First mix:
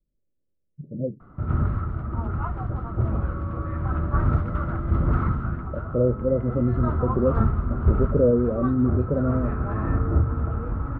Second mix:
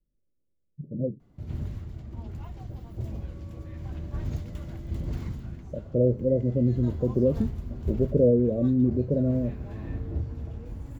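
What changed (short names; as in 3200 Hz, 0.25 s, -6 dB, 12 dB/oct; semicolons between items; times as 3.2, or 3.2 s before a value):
background -10.0 dB; master: remove synth low-pass 1300 Hz, resonance Q 16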